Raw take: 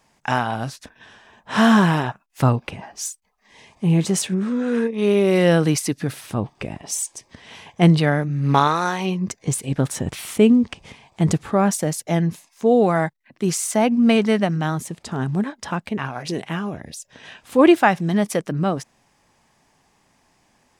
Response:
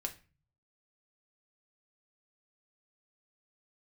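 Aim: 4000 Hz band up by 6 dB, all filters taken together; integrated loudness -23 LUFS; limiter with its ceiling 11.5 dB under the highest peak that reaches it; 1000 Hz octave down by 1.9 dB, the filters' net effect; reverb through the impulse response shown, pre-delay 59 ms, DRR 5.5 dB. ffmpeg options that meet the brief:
-filter_complex "[0:a]equalizer=f=1k:t=o:g=-3,equalizer=f=4k:t=o:g=8.5,alimiter=limit=-13dB:level=0:latency=1,asplit=2[a][b];[1:a]atrim=start_sample=2205,adelay=59[c];[b][c]afir=irnorm=-1:irlink=0,volume=-5dB[d];[a][d]amix=inputs=2:normalize=0,volume=-0.5dB"

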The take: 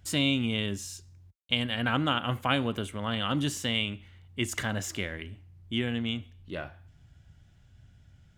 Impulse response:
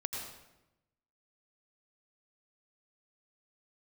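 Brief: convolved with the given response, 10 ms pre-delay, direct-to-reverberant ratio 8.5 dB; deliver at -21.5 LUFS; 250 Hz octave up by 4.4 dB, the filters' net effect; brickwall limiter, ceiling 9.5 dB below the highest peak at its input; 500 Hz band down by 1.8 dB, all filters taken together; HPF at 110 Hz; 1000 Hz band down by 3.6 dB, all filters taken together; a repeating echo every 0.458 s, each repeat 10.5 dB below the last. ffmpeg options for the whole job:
-filter_complex "[0:a]highpass=110,equalizer=f=250:t=o:g=6,equalizer=f=500:t=o:g=-3,equalizer=f=1k:t=o:g=-4.5,alimiter=limit=-18dB:level=0:latency=1,aecho=1:1:458|916|1374:0.299|0.0896|0.0269,asplit=2[a][b];[1:a]atrim=start_sample=2205,adelay=10[c];[b][c]afir=irnorm=-1:irlink=0,volume=-10.5dB[d];[a][d]amix=inputs=2:normalize=0,volume=8.5dB"

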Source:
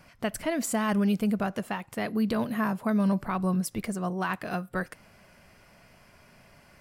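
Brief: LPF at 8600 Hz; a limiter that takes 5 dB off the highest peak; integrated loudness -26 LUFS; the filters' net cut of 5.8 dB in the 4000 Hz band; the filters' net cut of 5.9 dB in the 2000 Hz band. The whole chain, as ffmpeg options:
-af "lowpass=8.6k,equalizer=f=2k:t=o:g=-7,equalizer=f=4k:t=o:g=-5,volume=5.5dB,alimiter=limit=-16dB:level=0:latency=1"

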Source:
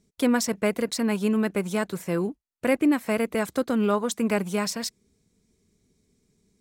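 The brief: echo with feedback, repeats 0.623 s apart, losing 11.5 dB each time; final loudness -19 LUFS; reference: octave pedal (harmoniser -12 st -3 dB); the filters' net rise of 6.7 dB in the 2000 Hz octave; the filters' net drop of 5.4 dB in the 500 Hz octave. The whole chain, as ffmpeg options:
-filter_complex "[0:a]equalizer=f=500:t=o:g=-7,equalizer=f=2k:t=o:g=8.5,aecho=1:1:623|1246|1869:0.266|0.0718|0.0194,asplit=2[a][b];[b]asetrate=22050,aresample=44100,atempo=2,volume=-3dB[c];[a][c]amix=inputs=2:normalize=0,volume=5.5dB"

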